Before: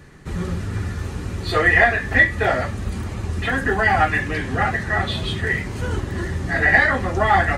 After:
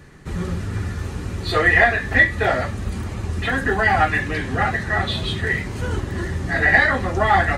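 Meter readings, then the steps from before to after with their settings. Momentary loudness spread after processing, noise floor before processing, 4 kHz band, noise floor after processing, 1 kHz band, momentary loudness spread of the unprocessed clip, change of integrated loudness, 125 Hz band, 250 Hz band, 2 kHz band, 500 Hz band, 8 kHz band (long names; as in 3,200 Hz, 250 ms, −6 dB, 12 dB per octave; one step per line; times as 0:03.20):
13 LU, −30 dBFS, +1.5 dB, −30 dBFS, 0.0 dB, 13 LU, 0.0 dB, 0.0 dB, 0.0 dB, 0.0 dB, 0.0 dB, 0.0 dB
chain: dynamic equaliser 3,900 Hz, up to +5 dB, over −49 dBFS, Q 7.5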